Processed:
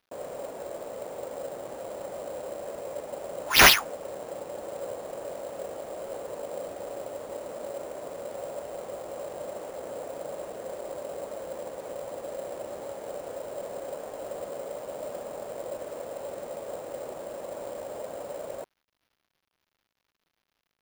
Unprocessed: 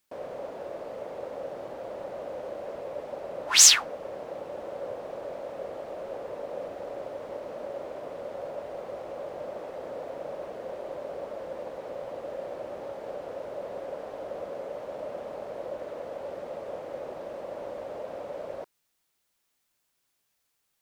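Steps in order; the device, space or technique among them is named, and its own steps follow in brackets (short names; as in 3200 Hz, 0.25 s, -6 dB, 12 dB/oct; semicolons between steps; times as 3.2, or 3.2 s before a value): early companding sampler (sample-rate reducer 8100 Hz, jitter 0%; companded quantiser 6-bit)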